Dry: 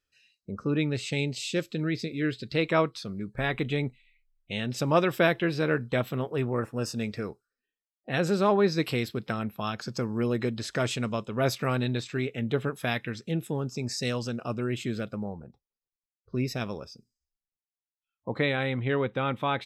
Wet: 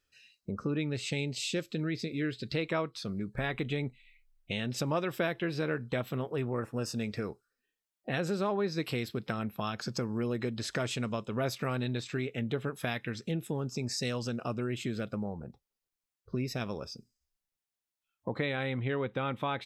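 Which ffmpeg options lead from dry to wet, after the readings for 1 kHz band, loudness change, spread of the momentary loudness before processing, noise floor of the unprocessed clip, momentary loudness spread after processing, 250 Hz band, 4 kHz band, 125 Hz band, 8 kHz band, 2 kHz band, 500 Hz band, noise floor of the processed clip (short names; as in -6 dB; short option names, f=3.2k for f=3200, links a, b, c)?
-6.0 dB, -5.0 dB, 10 LU, under -85 dBFS, 6 LU, -4.5 dB, -3.5 dB, -4.5 dB, -2.0 dB, -5.5 dB, -6.0 dB, under -85 dBFS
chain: -af "acompressor=threshold=-38dB:ratio=2.5,volume=4dB"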